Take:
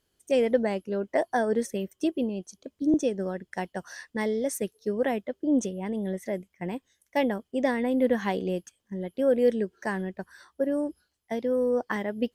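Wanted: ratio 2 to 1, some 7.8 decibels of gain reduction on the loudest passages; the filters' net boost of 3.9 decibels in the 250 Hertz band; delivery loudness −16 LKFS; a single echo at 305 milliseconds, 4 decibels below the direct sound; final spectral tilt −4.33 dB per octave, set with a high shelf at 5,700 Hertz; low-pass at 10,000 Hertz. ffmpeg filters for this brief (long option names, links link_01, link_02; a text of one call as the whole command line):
ffmpeg -i in.wav -af "lowpass=10000,equalizer=frequency=250:width_type=o:gain=4.5,highshelf=frequency=5700:gain=4,acompressor=threshold=-30dB:ratio=2,aecho=1:1:305:0.631,volume=14.5dB" out.wav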